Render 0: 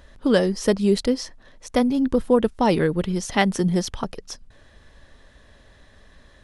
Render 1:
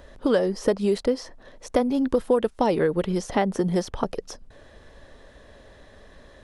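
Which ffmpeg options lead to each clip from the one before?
ffmpeg -i in.wav -filter_complex "[0:a]equalizer=frequency=500:width=0.79:gain=8,acrossover=split=740|1700[link_01][link_02][link_03];[link_01]acompressor=threshold=-22dB:ratio=4[link_04];[link_02]acompressor=threshold=-27dB:ratio=4[link_05];[link_03]acompressor=threshold=-39dB:ratio=4[link_06];[link_04][link_05][link_06]amix=inputs=3:normalize=0" out.wav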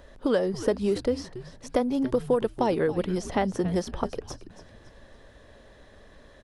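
ffmpeg -i in.wav -filter_complex "[0:a]asplit=5[link_01][link_02][link_03][link_04][link_05];[link_02]adelay=280,afreqshift=-120,volume=-14dB[link_06];[link_03]adelay=560,afreqshift=-240,volume=-22.6dB[link_07];[link_04]adelay=840,afreqshift=-360,volume=-31.3dB[link_08];[link_05]adelay=1120,afreqshift=-480,volume=-39.9dB[link_09];[link_01][link_06][link_07][link_08][link_09]amix=inputs=5:normalize=0,volume=-3dB" out.wav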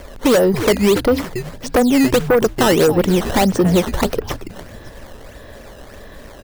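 ffmpeg -i in.wav -af "acrusher=samples=11:mix=1:aa=0.000001:lfo=1:lforange=17.6:lforate=1.6,aeval=exprs='0.299*(cos(1*acos(clip(val(0)/0.299,-1,1)))-cos(1*PI/2))+0.15*(cos(5*acos(clip(val(0)/0.299,-1,1)))-cos(5*PI/2))':channel_layout=same,volume=3.5dB" out.wav

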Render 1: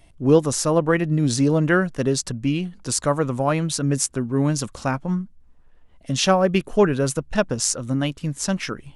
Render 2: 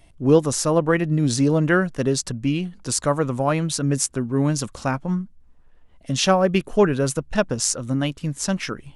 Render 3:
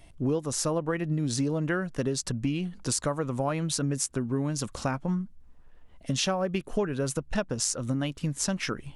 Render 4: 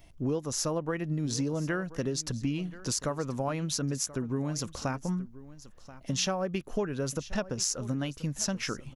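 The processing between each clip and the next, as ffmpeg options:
ffmpeg -i in.wav -af anull out.wav
ffmpeg -i in.wav -af "acompressor=threshold=-25dB:ratio=6" out.wav
ffmpeg -i in.wav -af "aexciter=amount=1.3:drive=3.6:freq=5100,aecho=1:1:1032:0.133,volume=-3dB" out.wav

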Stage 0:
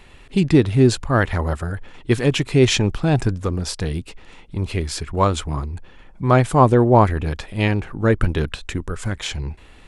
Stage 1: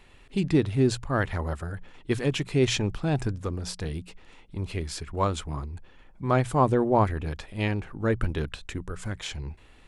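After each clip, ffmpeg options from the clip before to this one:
ffmpeg -i in.wav -af "bandreject=frequency=60:width_type=h:width=6,bandreject=frequency=120:width_type=h:width=6,bandreject=frequency=180:width_type=h:width=6,volume=-8dB" out.wav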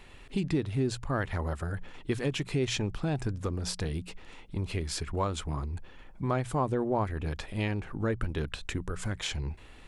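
ffmpeg -i in.wav -af "acompressor=threshold=-33dB:ratio=2.5,volume=3dB" out.wav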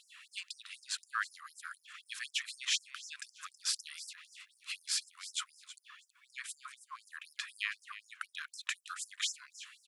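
ffmpeg -i in.wav -af "aecho=1:1:322|644:0.2|0.0359,afftfilt=real='re*gte(b*sr/1024,980*pow(5100/980,0.5+0.5*sin(2*PI*4*pts/sr)))':imag='im*gte(b*sr/1024,980*pow(5100/980,0.5+0.5*sin(2*PI*4*pts/sr)))':win_size=1024:overlap=0.75,volume=2.5dB" out.wav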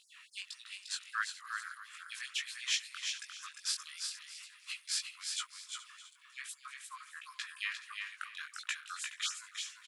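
ffmpeg -i in.wav -af "flanger=delay=16.5:depth=5.9:speed=1.5,aecho=1:1:351|422|617:0.562|0.15|0.126,volume=2dB" out.wav

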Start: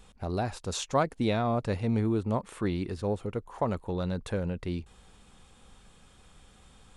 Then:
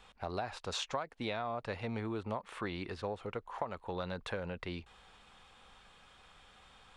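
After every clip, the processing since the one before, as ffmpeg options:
ffmpeg -i in.wav -filter_complex "[0:a]acrossover=split=580 4600:gain=0.224 1 0.178[link_01][link_02][link_03];[link_01][link_02][link_03]amix=inputs=3:normalize=0,acompressor=threshold=-36dB:ratio=10,volume=3dB" out.wav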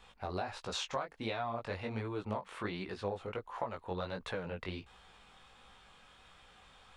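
ffmpeg -i in.wav -af "flanger=delay=15.5:depth=6.3:speed=1.4,volume=3dB" out.wav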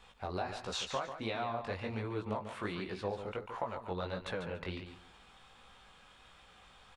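ffmpeg -i in.wav -af "aecho=1:1:143|286|429:0.355|0.0745|0.0156" out.wav

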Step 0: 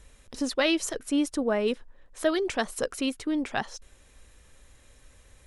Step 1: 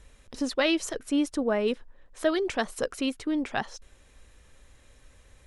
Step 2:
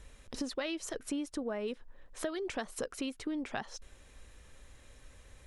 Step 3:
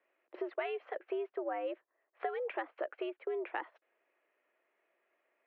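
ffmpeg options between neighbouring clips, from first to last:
ffmpeg -i in.wav -af "highshelf=frequency=8100:gain=-7" out.wav
ffmpeg -i in.wav -af "acompressor=threshold=-34dB:ratio=6" out.wav
ffmpeg -i in.wav -af "agate=range=-14dB:threshold=-44dB:ratio=16:detection=peak,highpass=frequency=240:width_type=q:width=0.5412,highpass=frequency=240:width_type=q:width=1.307,lowpass=frequency=2500:width_type=q:width=0.5176,lowpass=frequency=2500:width_type=q:width=0.7071,lowpass=frequency=2500:width_type=q:width=1.932,afreqshift=100" out.wav

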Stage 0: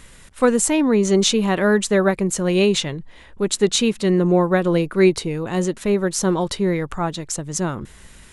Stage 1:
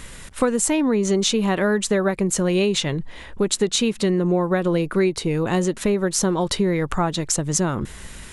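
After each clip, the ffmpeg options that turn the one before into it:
ffmpeg -i in.wav -af "acompressor=threshold=-24dB:ratio=5,volume=6.5dB" out.wav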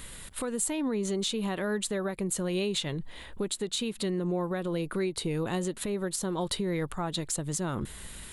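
ffmpeg -i in.wav -af "alimiter=limit=-15.5dB:level=0:latency=1:release=204,aexciter=amount=1.4:drive=4.6:freq=3200,volume=-7dB" out.wav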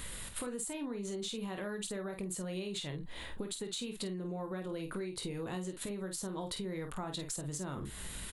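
ffmpeg -i in.wav -filter_complex "[0:a]asplit=2[link_01][link_02];[link_02]aecho=0:1:21|49:0.355|0.422[link_03];[link_01][link_03]amix=inputs=2:normalize=0,acompressor=threshold=-37dB:ratio=6" out.wav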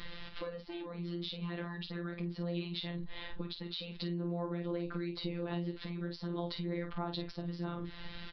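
ffmpeg -i in.wav -af "afftfilt=real='hypot(re,im)*cos(PI*b)':imag='0':win_size=1024:overlap=0.75,aresample=11025,aresample=44100,volume=3.5dB" out.wav

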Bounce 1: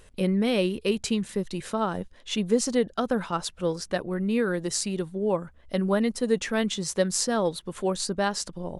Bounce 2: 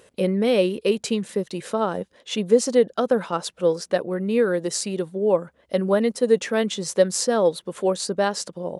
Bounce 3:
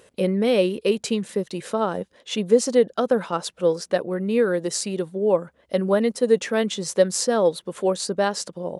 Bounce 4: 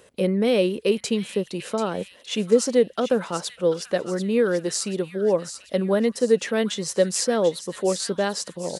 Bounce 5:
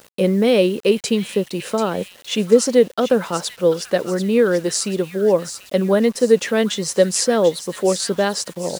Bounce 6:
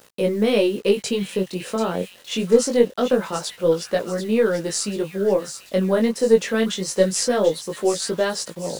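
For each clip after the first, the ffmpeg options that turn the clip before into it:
ffmpeg -i in.wav -af "highpass=150,equalizer=frequency=510:width=1.9:gain=7,volume=1.5dB" out.wav
ffmpeg -i in.wav -af anull out.wav
ffmpeg -i in.wav -filter_complex "[0:a]acrossover=split=650|1300[link_01][link_02][link_03];[link_02]alimiter=level_in=5dB:limit=-24dB:level=0:latency=1,volume=-5dB[link_04];[link_03]aecho=1:1:738|1476|2214|2952|3690:0.335|0.164|0.0804|0.0394|0.0193[link_05];[link_01][link_04][link_05]amix=inputs=3:normalize=0" out.wav
ffmpeg -i in.wav -af "acrusher=bits=7:mix=0:aa=0.000001,volume=5dB" out.wav
ffmpeg -i in.wav -af "aeval=exprs='0.891*(cos(1*acos(clip(val(0)/0.891,-1,1)))-cos(1*PI/2))+0.02*(cos(4*acos(clip(val(0)/0.891,-1,1)))-cos(4*PI/2))':channel_layout=same,flanger=delay=18:depth=4.3:speed=0.24" out.wav

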